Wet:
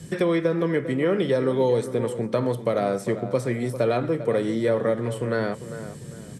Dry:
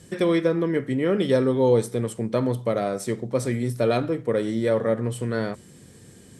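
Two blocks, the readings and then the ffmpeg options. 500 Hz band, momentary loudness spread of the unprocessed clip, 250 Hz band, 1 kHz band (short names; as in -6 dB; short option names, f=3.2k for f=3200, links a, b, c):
0.0 dB, 7 LU, -1.0 dB, +1.0 dB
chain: -filter_complex "[0:a]equalizer=f=150:w=2.2:g=10,acrossover=split=330|2500[a][b][c];[a]acompressor=threshold=-36dB:ratio=4[d];[b]acompressor=threshold=-24dB:ratio=4[e];[c]acompressor=threshold=-48dB:ratio=4[f];[d][e][f]amix=inputs=3:normalize=0,asplit=2[g][h];[h]adelay=399,lowpass=f=2.2k:p=1,volume=-11.5dB,asplit=2[i][j];[j]adelay=399,lowpass=f=2.2k:p=1,volume=0.33,asplit=2[k][l];[l]adelay=399,lowpass=f=2.2k:p=1,volume=0.33[m];[i][k][m]amix=inputs=3:normalize=0[n];[g][n]amix=inputs=2:normalize=0,volume=4dB"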